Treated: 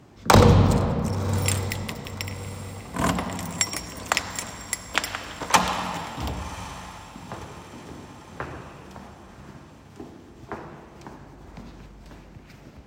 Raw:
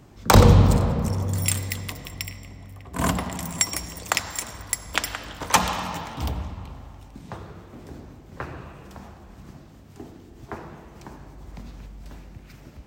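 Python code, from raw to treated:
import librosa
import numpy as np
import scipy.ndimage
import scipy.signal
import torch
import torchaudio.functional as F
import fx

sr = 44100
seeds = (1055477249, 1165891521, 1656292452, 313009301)

y = fx.highpass(x, sr, hz=110.0, slope=6)
y = fx.high_shelf(y, sr, hz=9200.0, db=-8.5)
y = fx.echo_diffused(y, sr, ms=1078, feedback_pct=47, wet_db=-15.5)
y = y * 10.0 ** (1.0 / 20.0)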